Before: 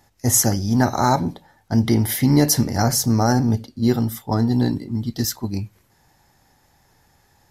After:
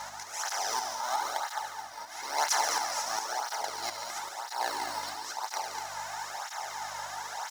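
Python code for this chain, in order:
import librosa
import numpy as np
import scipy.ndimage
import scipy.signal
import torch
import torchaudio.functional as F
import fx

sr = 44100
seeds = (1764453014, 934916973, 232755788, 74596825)

p1 = fx.bin_compress(x, sr, power=0.4)
p2 = fx.air_absorb(p1, sr, metres=87.0)
p3 = fx.sample_hold(p2, sr, seeds[0], rate_hz=4600.0, jitter_pct=0)
p4 = p2 + (p3 * librosa.db_to_amplitude(-7.0))
p5 = scipy.signal.sosfilt(scipy.signal.butter(4, 810.0, 'highpass', fs=sr, output='sos'), p4)
p6 = fx.add_hum(p5, sr, base_hz=50, snr_db=28)
p7 = fx.auto_swell(p6, sr, attack_ms=431.0)
p8 = p7 + fx.echo_heads(p7, sr, ms=71, heads='all three', feedback_pct=49, wet_db=-9.0, dry=0)
p9 = fx.flanger_cancel(p8, sr, hz=1.0, depth_ms=2.8)
y = p9 * librosa.db_to_amplitude(-4.5)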